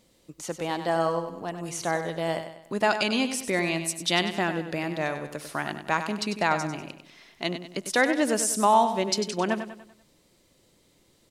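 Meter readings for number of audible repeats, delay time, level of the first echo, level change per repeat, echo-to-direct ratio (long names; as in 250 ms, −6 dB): 4, 97 ms, −9.5 dB, −7.0 dB, −8.5 dB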